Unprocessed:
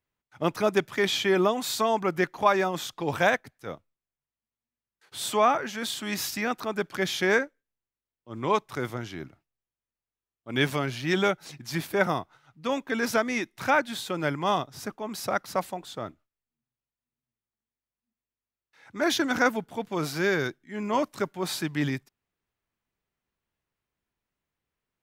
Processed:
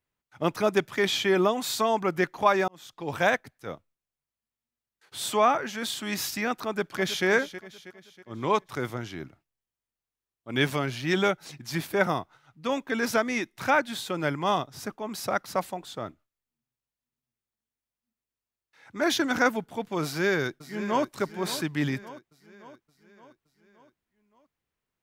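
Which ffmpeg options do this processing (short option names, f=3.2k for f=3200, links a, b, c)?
-filter_complex "[0:a]asplit=2[a][b];[b]afade=t=in:st=6.65:d=0.01,afade=t=out:st=7.26:d=0.01,aecho=0:1:320|640|960|1280|1600:0.223872|0.111936|0.055968|0.027984|0.013992[c];[a][c]amix=inputs=2:normalize=0,asplit=2[d][e];[e]afade=t=in:st=20.03:d=0.01,afade=t=out:st=21.05:d=0.01,aecho=0:1:570|1140|1710|2280|2850|3420:0.211349|0.116242|0.063933|0.0351632|0.0193397|0.0106369[f];[d][f]amix=inputs=2:normalize=0,asplit=2[g][h];[g]atrim=end=2.68,asetpts=PTS-STARTPTS,afade=t=out:st=2.676:d=0.004:c=hsin[i];[h]atrim=start=2.68,asetpts=PTS-STARTPTS,afade=t=in:d=0.64[j];[i][j]concat=n=2:v=0:a=1"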